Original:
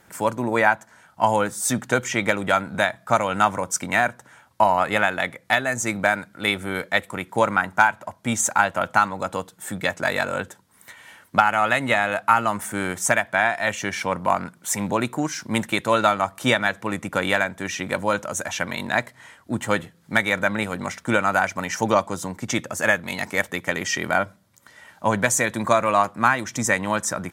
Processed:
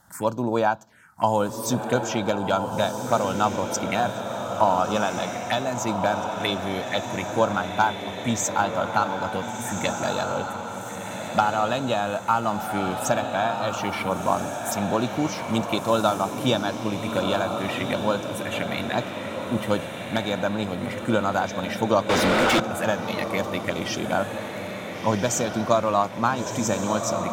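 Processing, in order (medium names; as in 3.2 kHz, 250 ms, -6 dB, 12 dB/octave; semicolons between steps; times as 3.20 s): touch-sensitive phaser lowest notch 400 Hz, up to 2 kHz, full sweep at -20.5 dBFS; echo that smears into a reverb 1428 ms, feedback 48%, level -5.5 dB; 22.09–22.60 s: overdrive pedal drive 30 dB, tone 3.7 kHz, clips at -11.5 dBFS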